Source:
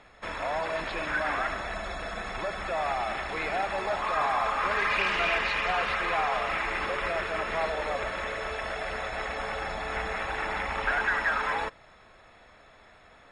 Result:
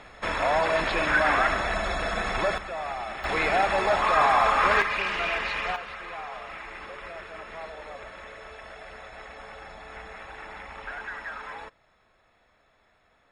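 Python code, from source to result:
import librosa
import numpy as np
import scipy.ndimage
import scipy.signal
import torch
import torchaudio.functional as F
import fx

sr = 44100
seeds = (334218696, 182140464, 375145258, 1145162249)

y = fx.gain(x, sr, db=fx.steps((0.0, 7.0), (2.58, -3.5), (3.24, 6.5), (4.82, -1.5), (5.76, -10.0)))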